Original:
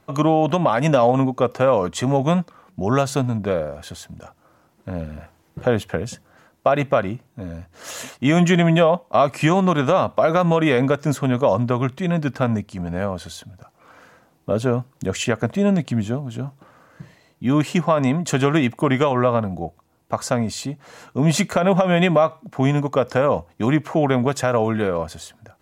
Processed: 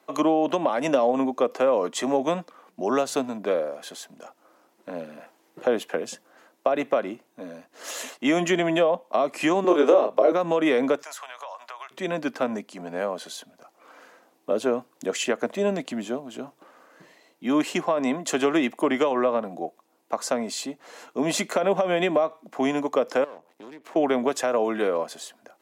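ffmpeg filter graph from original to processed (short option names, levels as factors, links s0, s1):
-filter_complex "[0:a]asettb=1/sr,asplit=3[s0][s1][s2];[s0]atrim=end=9.644[s3];[s1]atrim=start=9.64:end=10.32,asetpts=PTS-STARTPTS,afade=t=in:d=0.004:c=qsin,afade=t=out:st=0.676:d=0.004:c=qsin,highpass=f=390:t=q:w=2.6,asplit=2[s4][s5];[s5]adelay=28,volume=0.596[s6];[s4][s6]amix=inputs=2:normalize=0,atrim=end_sample=29988,aeval=exprs='val(0)+0.0251*(sin(2*PI*50*n/s)+sin(2*PI*2*50*n/s)/2+sin(2*PI*3*50*n/s)/3+sin(2*PI*4*50*n/s)/4+sin(2*PI*5*50*n/s)/5)':c=same[s7];[s2]atrim=start=10.316[s8];[s3][s7]acrossfade=d=0.004:c1=hsin:c2=qsin[s9];[s9][s8]acrossfade=d=0.004:c1=qsin:c2=hsin,asettb=1/sr,asplit=3[s10][s11][s12];[s10]atrim=end=11.024[s13];[s11]atrim=start=11.02:end=11.91,asetpts=PTS-STARTPTS,afade=t=in:d=0.004:c=qsin,afade=t=out:st=0.886:d=0.004:c=qsin,highpass=f=820:w=0.5412,highpass=f=820:w=1.3066,acompressor=threshold=0.0251:ratio=12:attack=3.2:release=140:knee=1:detection=peak[s14];[s12]atrim=start=11.906[s15];[s13][s14]acrossfade=d=0.004:c1=hsin:c2=qsin[s16];[s16][s15]acrossfade=d=0.004:c1=qsin:c2=hsin,asettb=1/sr,asplit=3[s17][s18][s19];[s17]atrim=end=23.244[s20];[s18]atrim=start=23.24:end=23.96,asetpts=PTS-STARTPTS,afade=t=in:d=0.004:c=qsin,afade=t=out:st=0.716:d=0.004:c=qsin,equalizer=f=63:w=1.4:g=12.5,acompressor=threshold=0.0224:ratio=5:attack=3.2:release=140:knee=1:detection=peak,aeval=exprs='max(val(0),0)':c=same[s21];[s19]atrim=start=23.956[s22];[s20][s21]acrossfade=d=0.004:c1=hsin:c2=qsin[s23];[s23][s22]acrossfade=d=0.004:c1=qsin:c2=hsin,highpass=f=270:w=0.5412,highpass=f=270:w=1.3066,equalizer=f=1400:w=4.3:g=-2.5,acrossover=split=490[s24][s25];[s25]acompressor=threshold=0.0708:ratio=4[s26];[s24][s26]amix=inputs=2:normalize=0,volume=0.891"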